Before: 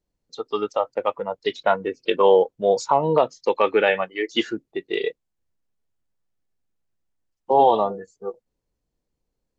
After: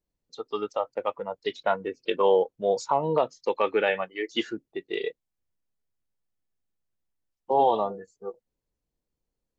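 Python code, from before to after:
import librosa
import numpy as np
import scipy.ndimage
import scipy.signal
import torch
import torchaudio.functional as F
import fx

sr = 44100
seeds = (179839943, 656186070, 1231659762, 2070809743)

y = x * librosa.db_to_amplitude(-5.5)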